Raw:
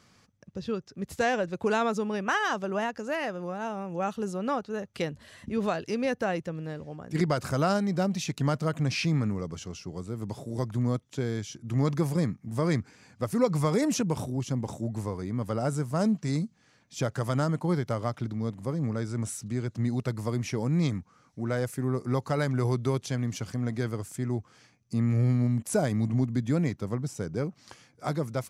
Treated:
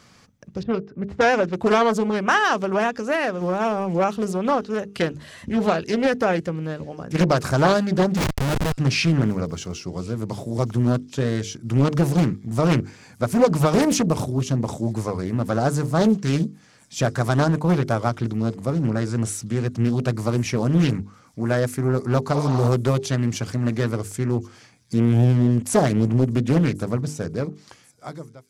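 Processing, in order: ending faded out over 1.60 s; 0.63–1.53 low-pass opened by the level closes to 690 Hz, open at -21.5 dBFS; notches 50/100/150/200/250/300/350/400/450 Hz; 3.41–4.04 sample leveller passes 1; 8.17–8.78 Schmitt trigger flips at -29.5 dBFS; 22.36–22.66 spectral repair 540–5700 Hz after; on a send: thin delay 1.086 s, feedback 54%, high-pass 4400 Hz, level -23 dB; on the sum: Doppler distortion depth 0.65 ms; gain +8.5 dB

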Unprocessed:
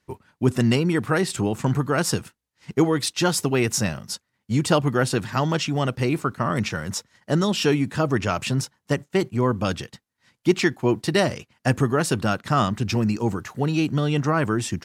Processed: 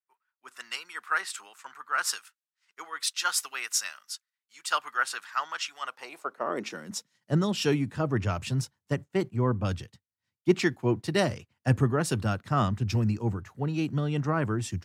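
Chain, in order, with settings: high-pass sweep 1300 Hz -> 87 Hz, 5.78–7.47; three-band expander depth 70%; gain -7.5 dB

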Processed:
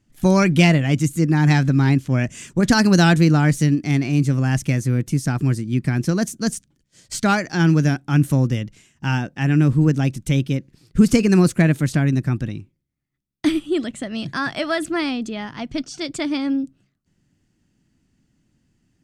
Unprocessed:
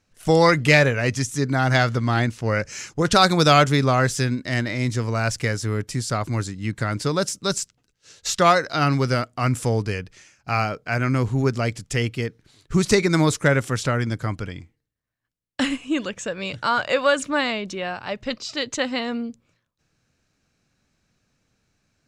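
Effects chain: resonant low shelf 330 Hz +8.5 dB, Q 1.5; varispeed +16%; gain -3 dB

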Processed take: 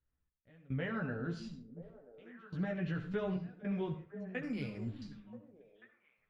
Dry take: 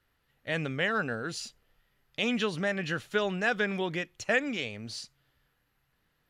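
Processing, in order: gate with hold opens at -59 dBFS; tone controls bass +10 dB, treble -2 dB; compressor 2:1, threshold -46 dBFS, peak gain reduction 13.5 dB; step gate "xx...xxxxxx.." 107 bpm -24 dB; chorus voices 4, 0.73 Hz, delay 14 ms, depth 2.8 ms; delay with a stepping band-pass 0.49 s, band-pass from 200 Hz, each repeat 1.4 oct, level -9 dB; reverb RT60 0.35 s, pre-delay 58 ms, DRR 8.5 dB; 4.43–5.02 careless resampling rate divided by 6×, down filtered, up hold; tape spacing loss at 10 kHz 26 dB; gain +6.5 dB

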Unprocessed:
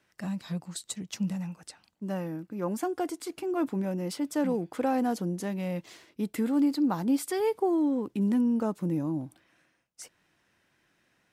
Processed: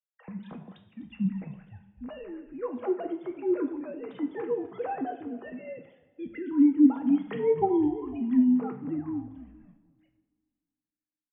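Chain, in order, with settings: sine-wave speech; on a send: frequency-shifting echo 0.251 s, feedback 59%, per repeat -47 Hz, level -18.5 dB; on the sum: expander -49 dBFS; two-slope reverb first 0.54 s, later 2.1 s, DRR 4 dB

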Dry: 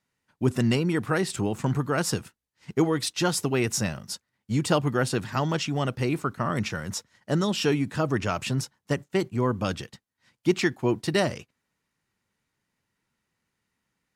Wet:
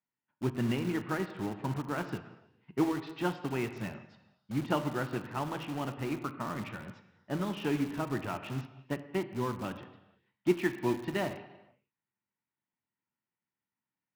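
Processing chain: speaker cabinet 110–3000 Hz, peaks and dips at 290 Hz +4 dB, 480 Hz -4 dB, 890 Hz +5 dB; non-linear reverb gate 0.5 s falling, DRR 6.5 dB; in parallel at -10.5 dB: wrapped overs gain 24.5 dB; on the sum: upward expander 1.5:1, over -41 dBFS; gain -5.5 dB

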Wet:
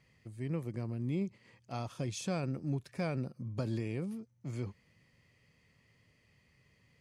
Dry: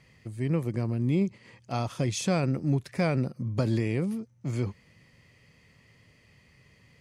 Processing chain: 1.9–4.12 notch 2000 Hz, Q 12; gain -9 dB

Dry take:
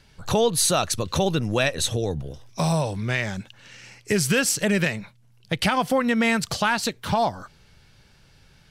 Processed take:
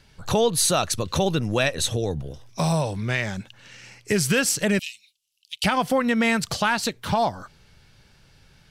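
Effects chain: 4.79–5.64 elliptic high-pass 2800 Hz, stop band 50 dB

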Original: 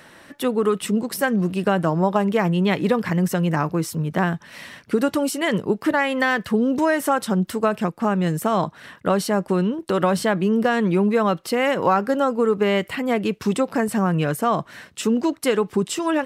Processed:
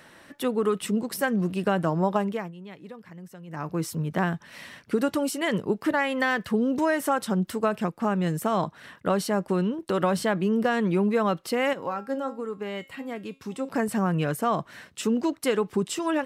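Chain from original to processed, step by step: 2.16–3.83 dip -18.5 dB, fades 0.36 s linear; 11.73–13.69 resonator 270 Hz, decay 0.31 s, harmonics all, mix 70%; gain -4.5 dB

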